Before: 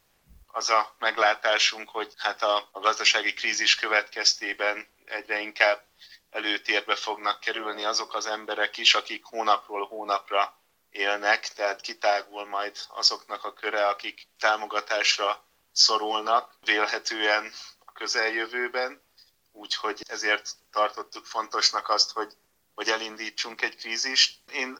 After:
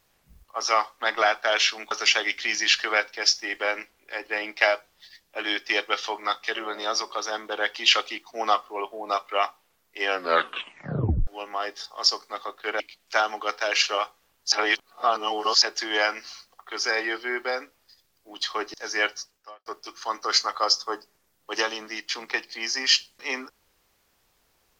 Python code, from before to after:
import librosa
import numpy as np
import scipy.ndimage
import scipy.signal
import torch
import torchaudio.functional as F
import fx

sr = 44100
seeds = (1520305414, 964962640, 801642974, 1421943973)

y = fx.edit(x, sr, fx.cut(start_s=1.91, length_s=0.99),
    fx.tape_stop(start_s=11.06, length_s=1.2),
    fx.cut(start_s=13.79, length_s=0.3),
    fx.reverse_span(start_s=15.81, length_s=1.1),
    fx.fade_out_span(start_s=20.48, length_s=0.47, curve='qua'), tone=tone)